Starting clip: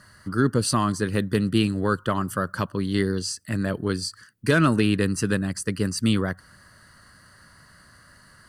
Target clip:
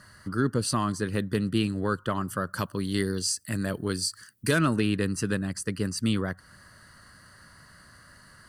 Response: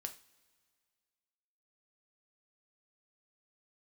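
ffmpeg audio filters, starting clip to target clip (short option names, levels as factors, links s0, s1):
-filter_complex "[0:a]asettb=1/sr,asplit=3[s0][s1][s2];[s0]atrim=end=2.534[s3];[s1]atrim=start=2.53:end=4.59,asetpts=PTS-STARTPTS,afade=t=in:d=0.004:c=qsin,afade=t=out:st=2.056:d=0.004:c=qsin,highshelf=f=5900:g=12[s4];[s2]atrim=start=4.586[s5];[s3][s4]acrossfade=d=0.004:c1=hsin:c2=qsin[s6];[s6][s5]acrossfade=d=0.004:c1=qsin:c2=hsin,asplit=2[s7][s8];[s8]acompressor=threshold=0.0178:ratio=6,volume=0.794[s9];[s7][s9]amix=inputs=2:normalize=0,volume=0.531"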